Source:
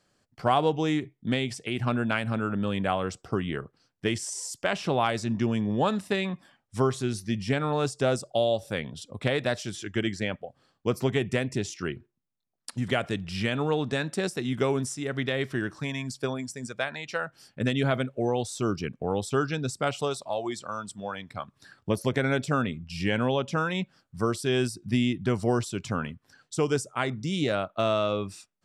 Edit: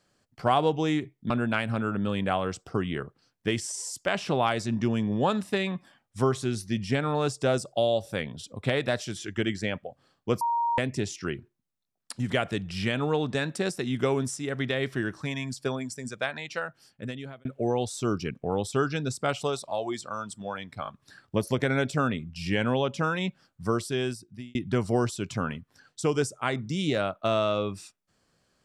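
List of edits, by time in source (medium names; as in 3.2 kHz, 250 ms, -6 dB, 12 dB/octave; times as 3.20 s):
1.30–1.88 s: delete
10.99–11.36 s: bleep 937 Hz -23 dBFS
17.00–18.03 s: fade out
21.41 s: stutter 0.02 s, 3 plays
24.28–25.09 s: fade out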